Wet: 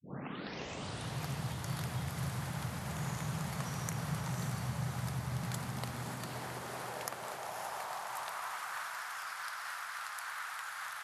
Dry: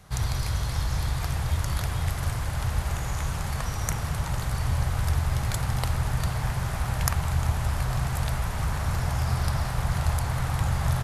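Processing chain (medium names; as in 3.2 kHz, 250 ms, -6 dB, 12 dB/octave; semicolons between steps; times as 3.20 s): tape start-up on the opening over 1.21 s; high-pass 75 Hz; compression 3:1, threshold -29 dBFS, peak gain reduction 8 dB; high-pass sweep 160 Hz -> 1.4 kHz, 5.31–8.75 s; on a send: echo that smears into a reverb 545 ms, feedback 41%, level -6 dB; on the sum: trim -6.5 dB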